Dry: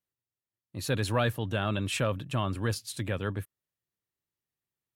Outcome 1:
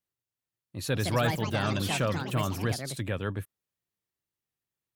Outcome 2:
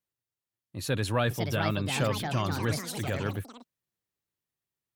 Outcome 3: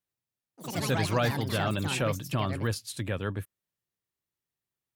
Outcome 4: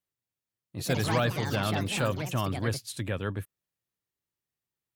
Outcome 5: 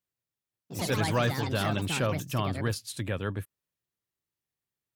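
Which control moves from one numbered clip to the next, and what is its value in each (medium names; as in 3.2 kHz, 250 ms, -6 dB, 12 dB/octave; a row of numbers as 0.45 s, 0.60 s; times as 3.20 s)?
ever faster or slower copies, time: 388 ms, 730 ms, 88 ms, 220 ms, 144 ms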